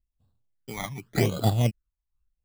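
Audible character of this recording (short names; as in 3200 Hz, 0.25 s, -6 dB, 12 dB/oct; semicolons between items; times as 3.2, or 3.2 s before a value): aliases and images of a low sample rate 2700 Hz, jitter 0%; phasing stages 12, 0.86 Hz, lowest notch 470–2100 Hz; noise-modulated level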